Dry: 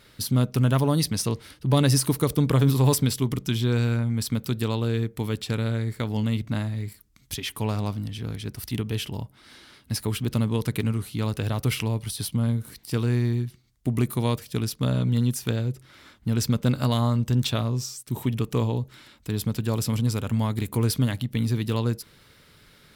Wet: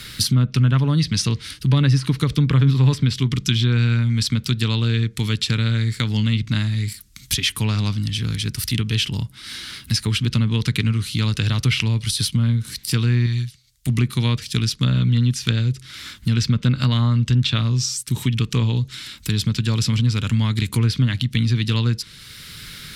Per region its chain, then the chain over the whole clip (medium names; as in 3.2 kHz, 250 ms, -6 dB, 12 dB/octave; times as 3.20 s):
13.26–13.89 s: peaking EQ 300 Hz -9.5 dB 1.6 oct + upward expansion, over -43 dBFS
whole clip: low-pass that closes with the level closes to 1.7 kHz, closed at -17 dBFS; FFT filter 160 Hz 0 dB, 700 Hz -15 dB, 1.4 kHz -1 dB, 4 kHz +8 dB; three bands compressed up and down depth 40%; trim +6.5 dB